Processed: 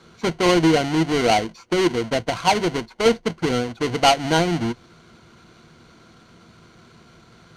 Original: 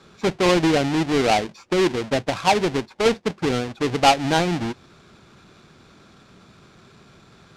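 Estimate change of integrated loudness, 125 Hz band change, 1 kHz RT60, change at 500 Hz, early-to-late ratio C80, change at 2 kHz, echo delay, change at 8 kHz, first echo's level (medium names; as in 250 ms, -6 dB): +0.5 dB, +1.0 dB, no reverb, +0.5 dB, no reverb, +0.5 dB, no echo, +1.5 dB, no echo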